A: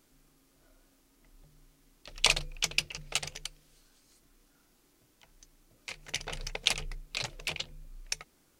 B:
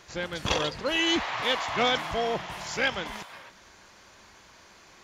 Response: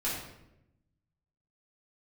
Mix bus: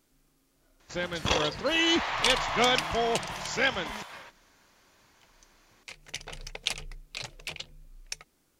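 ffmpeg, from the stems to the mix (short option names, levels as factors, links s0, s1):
-filter_complex "[0:a]volume=0.708[s0];[1:a]agate=range=0.316:threshold=0.00447:ratio=16:detection=peak,adelay=800,volume=1.06[s1];[s0][s1]amix=inputs=2:normalize=0"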